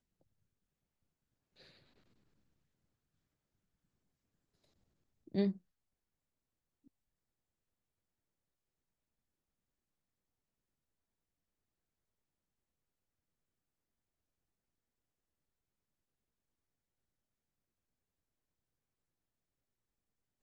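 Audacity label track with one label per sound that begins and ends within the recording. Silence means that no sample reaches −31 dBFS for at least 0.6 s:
5.350000	5.500000	sound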